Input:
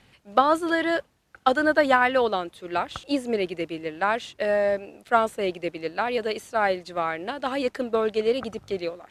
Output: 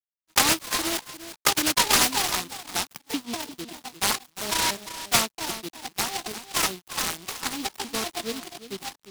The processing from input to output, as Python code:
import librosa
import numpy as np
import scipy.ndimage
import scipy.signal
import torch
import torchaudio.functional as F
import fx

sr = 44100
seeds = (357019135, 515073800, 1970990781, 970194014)

p1 = fx.pitch_trill(x, sr, semitones=8.0, every_ms=196)
p2 = np.sign(p1) * np.maximum(np.abs(p1) - 10.0 ** (-37.0 / 20.0), 0.0)
p3 = scipy.signal.sosfilt(scipy.signal.butter(2, 160.0, 'highpass', fs=sr, output='sos'), p2)
p4 = fx.fixed_phaser(p3, sr, hz=1300.0, stages=4)
p5 = p4 + fx.echo_single(p4, sr, ms=351, db=-12.5, dry=0)
p6 = fx.noise_mod_delay(p5, sr, seeds[0], noise_hz=3500.0, depth_ms=0.2)
y = p6 * 10.0 ** (2.5 / 20.0)